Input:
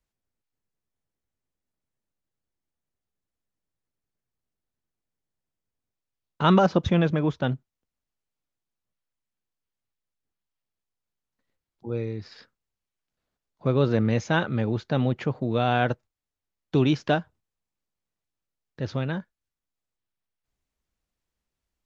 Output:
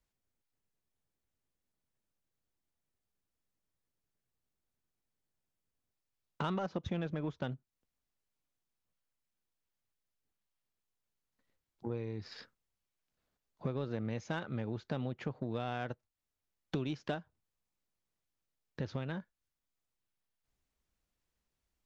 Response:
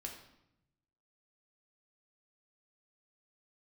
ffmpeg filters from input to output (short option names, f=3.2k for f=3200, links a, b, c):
-af "acompressor=threshold=-36dB:ratio=5,aeval=exprs='0.0841*(cos(1*acos(clip(val(0)/0.0841,-1,1)))-cos(1*PI/2))+0.00473*(cos(3*acos(clip(val(0)/0.0841,-1,1)))-cos(3*PI/2))+0.00299*(cos(7*acos(clip(val(0)/0.0841,-1,1)))-cos(7*PI/2))':c=same,asoftclip=type=tanh:threshold=-26dB,volume=3.5dB"